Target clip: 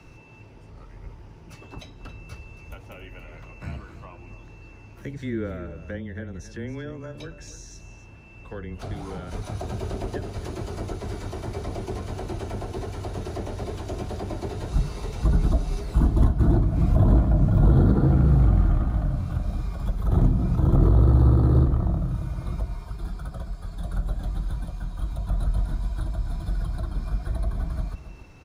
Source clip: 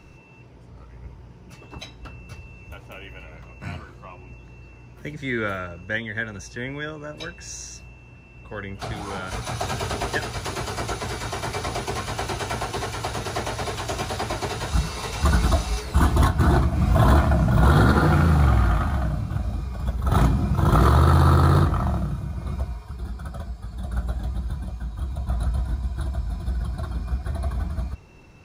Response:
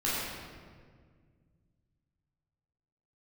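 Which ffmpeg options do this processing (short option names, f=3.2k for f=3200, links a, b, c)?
-filter_complex "[0:a]acrossover=split=570[a][b];[b]acompressor=threshold=-44dB:ratio=6[c];[a][c]amix=inputs=2:normalize=0,afreqshift=-16,aecho=1:1:275:0.211"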